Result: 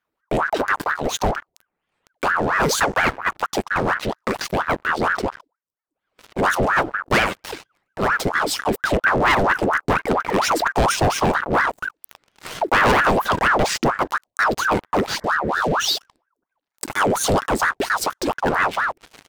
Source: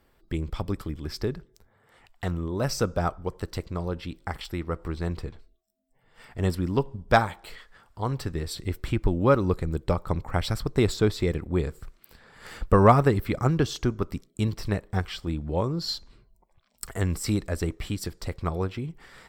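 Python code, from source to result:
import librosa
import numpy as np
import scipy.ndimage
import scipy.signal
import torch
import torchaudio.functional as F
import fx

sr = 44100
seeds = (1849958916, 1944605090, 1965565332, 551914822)

y = fx.leveller(x, sr, passes=5)
y = fx.spec_repair(y, sr, seeds[0], start_s=15.24, length_s=0.56, low_hz=330.0, high_hz=1900.0, source='both')
y = fx.ring_lfo(y, sr, carrier_hz=940.0, swing_pct=70, hz=4.3)
y = y * 10.0 ** (-3.5 / 20.0)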